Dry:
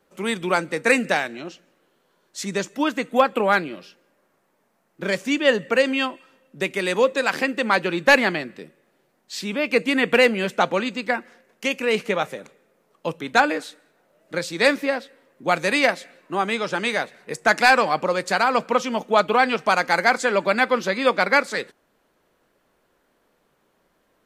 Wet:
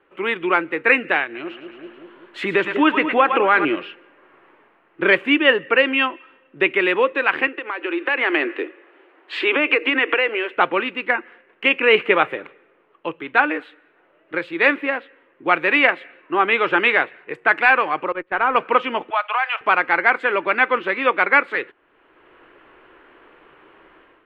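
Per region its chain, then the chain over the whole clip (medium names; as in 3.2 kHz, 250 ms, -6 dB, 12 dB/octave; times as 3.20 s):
1.24–3.65 s: two-band feedback delay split 610 Hz, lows 193 ms, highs 110 ms, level -12.5 dB + compression 2:1, threshold -31 dBFS
7.47–10.57 s: steep high-pass 280 Hz 48 dB/octave + treble shelf 11 kHz -11 dB + compression, threshold -28 dBFS
18.12–18.56 s: gate -26 dBFS, range -18 dB + distance through air 450 m + sliding maximum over 3 samples
19.10–19.61 s: steep high-pass 620 Hz 48 dB/octave + compression 2.5:1, threshold -22 dBFS
whole clip: FFT filter 120 Hz 0 dB, 210 Hz -7 dB, 330 Hz +10 dB, 600 Hz +1 dB, 1.1 kHz +9 dB, 2.9 kHz +9 dB, 5.8 kHz -29 dB, 8.5 kHz -24 dB; level rider; trim -1 dB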